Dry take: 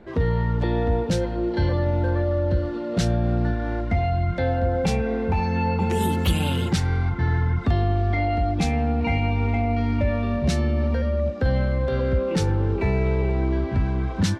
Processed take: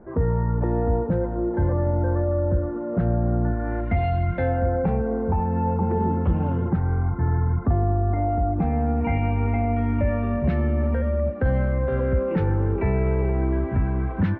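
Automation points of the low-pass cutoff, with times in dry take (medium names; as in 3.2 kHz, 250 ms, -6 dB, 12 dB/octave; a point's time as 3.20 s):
low-pass 24 dB/octave
3.51 s 1.4 kHz
4.08 s 3.4 kHz
5.05 s 1.3 kHz
8.50 s 1.3 kHz
9.21 s 2.1 kHz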